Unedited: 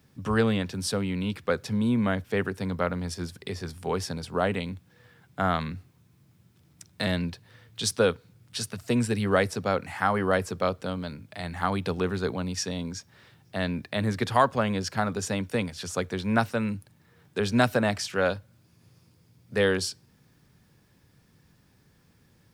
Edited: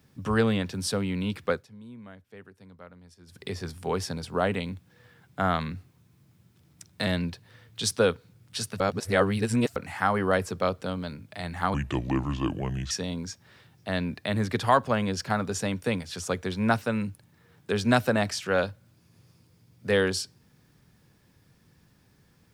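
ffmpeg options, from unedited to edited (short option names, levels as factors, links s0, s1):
-filter_complex "[0:a]asplit=7[s0][s1][s2][s3][s4][s5][s6];[s0]atrim=end=1.66,asetpts=PTS-STARTPTS,afade=t=out:st=1.5:d=0.16:silence=0.0944061[s7];[s1]atrim=start=1.66:end=3.26,asetpts=PTS-STARTPTS,volume=0.0944[s8];[s2]atrim=start=3.26:end=8.802,asetpts=PTS-STARTPTS,afade=t=in:d=0.16:silence=0.0944061[s9];[s3]atrim=start=8.798:end=9.762,asetpts=PTS-STARTPTS,areverse[s10];[s4]atrim=start=9.758:end=11.744[s11];[s5]atrim=start=11.74:end=12.58,asetpts=PTS-STARTPTS,asetrate=31752,aresample=44100[s12];[s6]atrim=start=12.576[s13];[s7][s8][s9]concat=n=3:v=0:a=1[s14];[s14][s10]acrossfade=d=0.004:c1=hsin:c2=hsin[s15];[s15][s11]acrossfade=d=0.004:c1=hsin:c2=hsin[s16];[s16][s12]acrossfade=d=0.004:c1=hsin:c2=hsin[s17];[s17][s13]acrossfade=d=0.004:c1=hsin:c2=hsin"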